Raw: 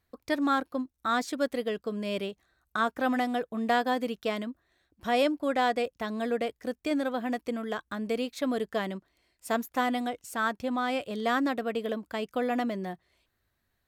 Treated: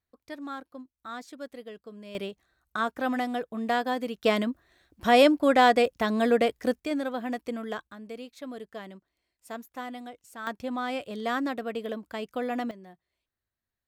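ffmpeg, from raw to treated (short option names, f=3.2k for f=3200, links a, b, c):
-af "asetnsamples=n=441:p=0,asendcmd='2.15 volume volume -1dB;4.24 volume volume 7dB;6.8 volume volume -1dB;7.87 volume volume -10dB;10.47 volume volume -2dB;12.71 volume volume -13.5dB',volume=-11.5dB"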